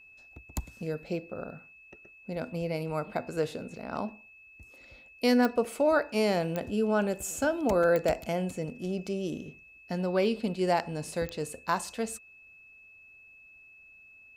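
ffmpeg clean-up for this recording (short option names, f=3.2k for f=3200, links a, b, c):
-af "adeclick=t=4,bandreject=f=2.6k:w=30"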